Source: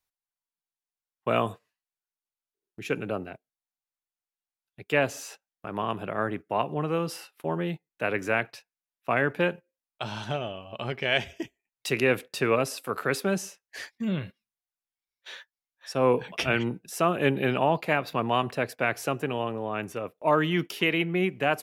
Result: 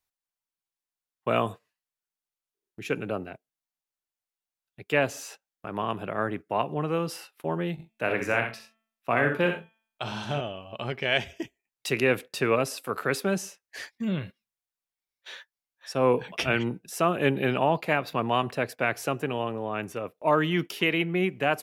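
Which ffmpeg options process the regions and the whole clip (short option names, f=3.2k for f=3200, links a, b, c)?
-filter_complex "[0:a]asettb=1/sr,asplit=3[a][b][c];[a]atrim=end=7.734[d];[b]atrim=start=7.73:end=10.41,asetpts=PTS-STARTPTS,afade=t=in:d=0.004:c=qsin,afade=t=out:st=2.676:d=0.004:c=qsin,asplit=2[e][f];[f]adelay=42,volume=-11dB[g];[e][g]amix=inputs=2:normalize=0,atrim=end_sample=118188,bandreject=f=222.6:t=h:w=4,bandreject=f=445.2:t=h:w=4,bandreject=f=667.8:t=h:w=4,bandreject=f=890.4:t=h:w=4,bandreject=f=1.113k:t=h:w=4,bandreject=f=1.3356k:t=h:w=4,bandreject=f=1.5582k:t=h:w=4,bandreject=f=1.7808k:t=h:w=4,bandreject=f=2.0034k:t=h:w=4,bandreject=f=2.226k:t=h:w=4,bandreject=f=2.4486k:t=h:w=4,bandreject=f=2.6712k:t=h:w=4,bandreject=f=2.8938k:t=h:w=4,bandreject=f=3.1164k:t=h:w=4,bandreject=f=3.339k:t=h:w=4,bandreject=f=3.5616k:t=h:w=4,aecho=1:1:62|86:0.447|0.224,atrim=end_sample=118188[h];[c]atrim=start=10.406[i];[d][h]acrossfade=d=0.004:c1=hsin:c2=qsin[j];[j][i]acrossfade=d=0.004:c1=qsin:c2=hsin"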